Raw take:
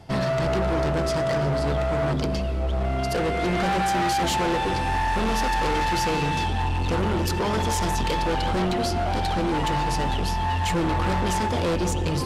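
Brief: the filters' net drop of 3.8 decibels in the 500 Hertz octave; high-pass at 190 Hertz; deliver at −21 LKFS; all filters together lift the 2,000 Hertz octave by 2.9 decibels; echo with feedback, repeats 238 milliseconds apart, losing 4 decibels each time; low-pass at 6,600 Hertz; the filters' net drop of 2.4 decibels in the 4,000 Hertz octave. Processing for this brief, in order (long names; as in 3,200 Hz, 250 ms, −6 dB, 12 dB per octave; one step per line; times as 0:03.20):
high-pass filter 190 Hz
low-pass filter 6,600 Hz
parametric band 500 Hz −5.5 dB
parametric band 2,000 Hz +5 dB
parametric band 4,000 Hz −4.5 dB
repeating echo 238 ms, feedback 63%, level −4 dB
level +3.5 dB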